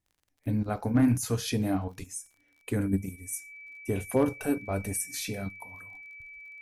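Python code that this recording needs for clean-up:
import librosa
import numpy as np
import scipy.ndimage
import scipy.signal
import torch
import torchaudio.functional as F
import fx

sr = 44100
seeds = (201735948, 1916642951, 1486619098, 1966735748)

y = fx.fix_declip(x, sr, threshold_db=-16.0)
y = fx.fix_declick_ar(y, sr, threshold=6.5)
y = fx.notch(y, sr, hz=2300.0, q=30.0)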